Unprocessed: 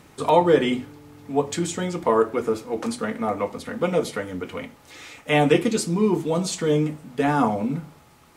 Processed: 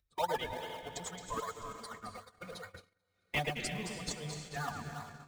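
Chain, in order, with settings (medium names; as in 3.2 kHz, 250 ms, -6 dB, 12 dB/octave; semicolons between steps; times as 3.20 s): expander on every frequency bin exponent 2; distance through air 54 m; echo that smears into a reverb 482 ms, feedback 48%, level -8 dB; vibrato 10 Hz 18 cents; amplifier tone stack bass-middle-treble 10-0-10; echo whose repeats swap between lows and highs 173 ms, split 1.9 kHz, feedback 71%, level -4.5 dB; in parallel at -4.5 dB: decimation with a swept rate 30×, swing 100% 1.6 Hz; on the sum: time stretch by phase-locked vocoder 0.63×; gate -46 dBFS, range -29 dB; upward compressor, threshold -57 dBFS; trim -2 dB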